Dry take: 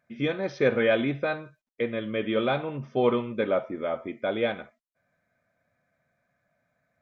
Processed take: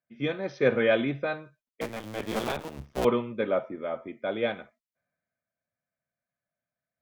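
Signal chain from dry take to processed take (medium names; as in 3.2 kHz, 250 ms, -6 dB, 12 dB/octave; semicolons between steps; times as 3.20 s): 1.81–3.05 s: cycle switcher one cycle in 2, muted; three bands expanded up and down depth 40%; trim -2 dB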